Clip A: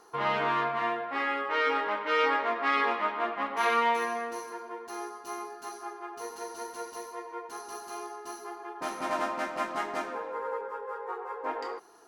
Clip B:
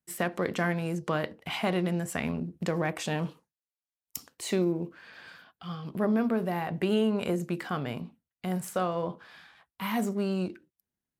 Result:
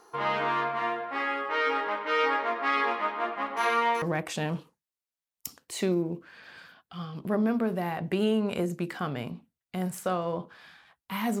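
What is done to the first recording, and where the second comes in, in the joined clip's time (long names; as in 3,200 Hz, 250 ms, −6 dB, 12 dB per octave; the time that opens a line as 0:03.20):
clip A
0:04.02: continue with clip B from 0:02.72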